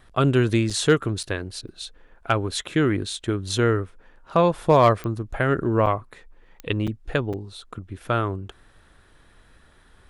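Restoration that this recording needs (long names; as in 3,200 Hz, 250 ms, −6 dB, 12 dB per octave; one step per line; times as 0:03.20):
clipped peaks rebuilt −7 dBFS
click removal
repair the gap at 0:00.70/0:01.23/0:01.68/0:05.86/0:06.87/0:07.33, 6 ms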